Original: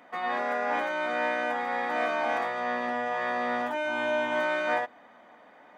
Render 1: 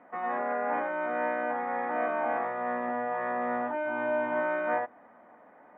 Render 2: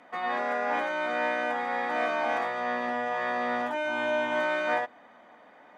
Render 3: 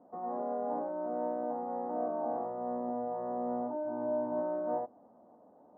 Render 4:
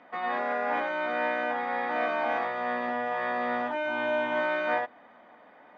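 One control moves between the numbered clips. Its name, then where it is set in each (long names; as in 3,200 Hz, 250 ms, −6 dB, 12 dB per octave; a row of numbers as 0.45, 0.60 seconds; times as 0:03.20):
Bessel low-pass filter, frequency: 1,400, 12,000, 540, 3,500 Hertz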